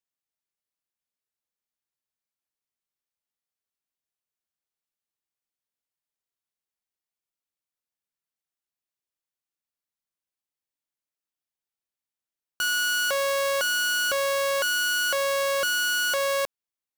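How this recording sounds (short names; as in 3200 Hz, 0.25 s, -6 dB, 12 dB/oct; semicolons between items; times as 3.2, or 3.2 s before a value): noise floor -92 dBFS; spectral tilt +0.5 dB/oct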